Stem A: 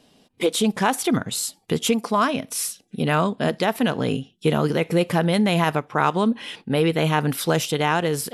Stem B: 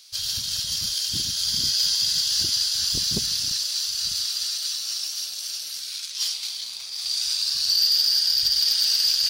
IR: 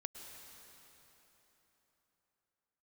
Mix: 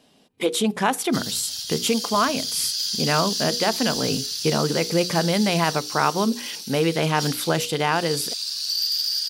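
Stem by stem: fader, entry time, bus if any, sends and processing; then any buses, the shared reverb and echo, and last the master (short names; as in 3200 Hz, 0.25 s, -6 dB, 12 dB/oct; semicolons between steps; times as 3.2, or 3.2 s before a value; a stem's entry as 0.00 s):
-0.5 dB, 0.00 s, no send, low shelf 76 Hz -9 dB; notches 60/120/180/240/300/360/420/480 Hz
-7.5 dB, 1.00 s, no send, tilt +1.5 dB/oct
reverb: off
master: dry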